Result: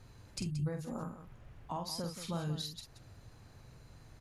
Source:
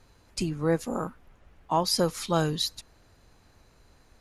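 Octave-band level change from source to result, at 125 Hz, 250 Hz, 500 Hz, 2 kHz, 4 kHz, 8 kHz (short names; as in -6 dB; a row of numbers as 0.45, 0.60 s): -6.0, -10.0, -15.5, -14.0, -12.5, -12.0 dB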